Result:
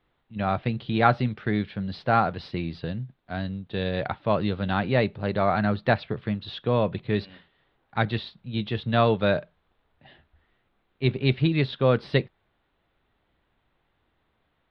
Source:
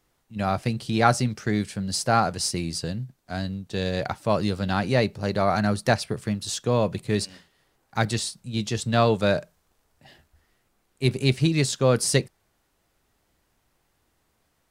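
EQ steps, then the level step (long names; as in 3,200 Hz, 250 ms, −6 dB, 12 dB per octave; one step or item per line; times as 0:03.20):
elliptic low-pass filter 3,700 Hz, stop band 50 dB
0.0 dB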